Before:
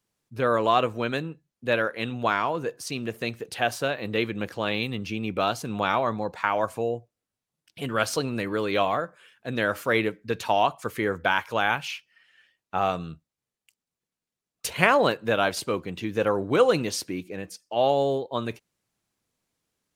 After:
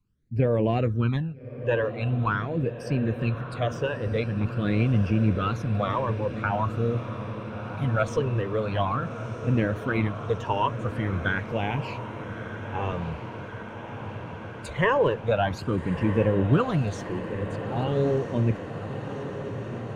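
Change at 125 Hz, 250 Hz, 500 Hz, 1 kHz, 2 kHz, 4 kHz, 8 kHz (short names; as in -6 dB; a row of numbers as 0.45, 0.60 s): +11.0 dB, +3.5 dB, -1.5 dB, -4.0 dB, -4.5 dB, -8.5 dB, under -10 dB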